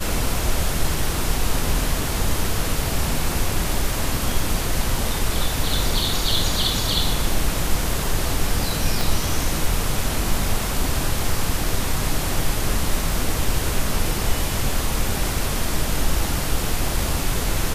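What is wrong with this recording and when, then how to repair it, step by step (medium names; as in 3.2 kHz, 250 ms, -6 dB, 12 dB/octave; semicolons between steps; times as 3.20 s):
9.01 s: pop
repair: de-click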